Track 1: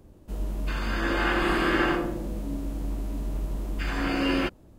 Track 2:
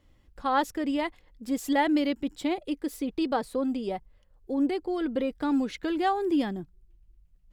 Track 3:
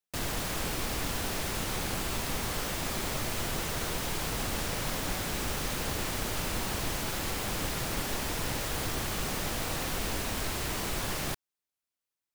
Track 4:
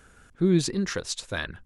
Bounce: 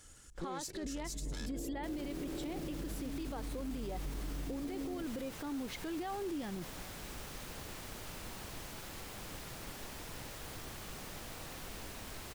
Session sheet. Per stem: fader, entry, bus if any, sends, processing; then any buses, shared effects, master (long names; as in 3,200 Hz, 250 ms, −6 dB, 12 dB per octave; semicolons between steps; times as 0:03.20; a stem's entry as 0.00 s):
−0.5 dB, 0.55 s, bus A, no send, inverse Chebyshev low-pass filter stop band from 1,800 Hz, stop band 60 dB; comb filter 6.9 ms, depth 53%; brickwall limiter −26 dBFS, peak gain reduction 10.5 dB
−0.5 dB, 0.00 s, no bus, no send, downward compressor, threshold −31 dBFS, peak gain reduction 11.5 dB
−13.5 dB, 1.70 s, no bus, no send, no processing
−11.5 dB, 0.00 s, bus A, no send, lower of the sound and its delayed copy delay 2.3 ms; parametric band 6,700 Hz +14 dB 1.5 octaves
bus A: 0.0 dB, high-shelf EQ 5,100 Hz +8 dB; downward compressor 4 to 1, threshold −34 dBFS, peak gain reduction 9.5 dB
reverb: not used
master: brickwall limiter −32.5 dBFS, peak gain reduction 11.5 dB